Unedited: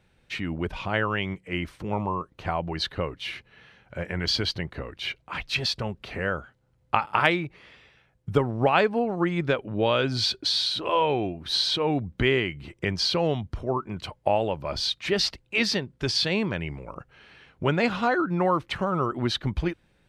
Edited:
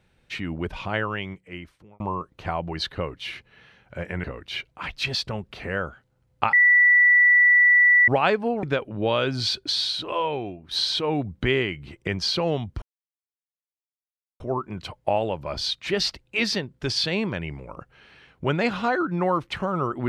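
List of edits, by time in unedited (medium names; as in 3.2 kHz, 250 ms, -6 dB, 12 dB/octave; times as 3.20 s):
0.89–2.00 s: fade out
4.24–4.75 s: delete
7.04–8.59 s: bleep 1.96 kHz -12.5 dBFS
9.14–9.40 s: delete
10.60–11.48 s: fade out, to -8.5 dB
13.59 s: insert silence 1.58 s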